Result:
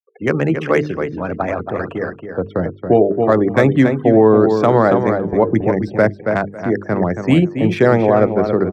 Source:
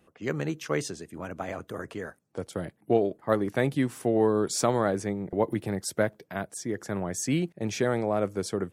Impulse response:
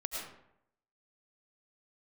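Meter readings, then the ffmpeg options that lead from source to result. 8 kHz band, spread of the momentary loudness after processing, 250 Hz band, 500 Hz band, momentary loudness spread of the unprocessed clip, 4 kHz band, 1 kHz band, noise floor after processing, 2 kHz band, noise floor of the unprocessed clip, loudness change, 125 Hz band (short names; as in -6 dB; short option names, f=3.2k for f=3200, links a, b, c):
under -10 dB, 10 LU, +13.5 dB, +13.5 dB, 12 LU, n/a, +13.5 dB, -38 dBFS, +12.5 dB, -67 dBFS, +13.0 dB, +13.5 dB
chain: -filter_complex "[0:a]acrossover=split=3900[a][b];[b]acompressor=threshold=-51dB:ratio=4:attack=1:release=60[c];[a][c]amix=inputs=2:normalize=0,afftfilt=real='re*gte(hypot(re,im),0.00708)':imag='im*gte(hypot(re,im),0.00708)':win_size=1024:overlap=0.75,lowpass=8.6k,acrossover=split=190|1100[d][e][f];[f]adynamicsmooth=sensitivity=6:basefreq=2.3k[g];[d][e][g]amix=inputs=3:normalize=0,bandreject=f=50:t=h:w=6,bandreject=f=100:t=h:w=6,bandreject=f=150:t=h:w=6,bandreject=f=200:t=h:w=6,bandreject=f=250:t=h:w=6,bandreject=f=300:t=h:w=6,bandreject=f=350:t=h:w=6,bandreject=f=400:t=h:w=6,bandreject=f=450:t=h:w=6,asplit=2[h][i];[i]adelay=276,lowpass=f=3.2k:p=1,volume=-7.5dB,asplit=2[j][k];[k]adelay=276,lowpass=f=3.2k:p=1,volume=0.18,asplit=2[l][m];[m]adelay=276,lowpass=f=3.2k:p=1,volume=0.18[n];[h][j][l][n]amix=inputs=4:normalize=0,alimiter=level_in=15.5dB:limit=-1dB:release=50:level=0:latency=1,volume=-1dB"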